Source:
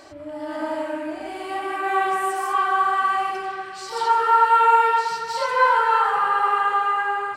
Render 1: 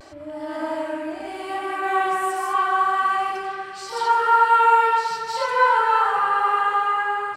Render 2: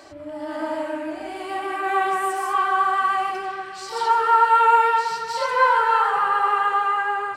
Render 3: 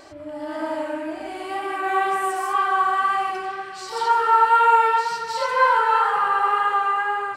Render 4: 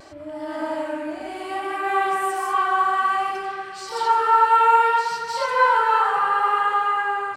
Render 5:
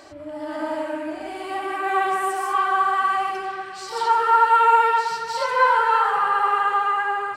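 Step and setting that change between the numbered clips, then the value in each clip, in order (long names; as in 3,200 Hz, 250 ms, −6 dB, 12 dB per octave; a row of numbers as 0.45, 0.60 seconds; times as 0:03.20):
pitch vibrato, speed: 0.31, 6.8, 2, 0.63, 15 Hertz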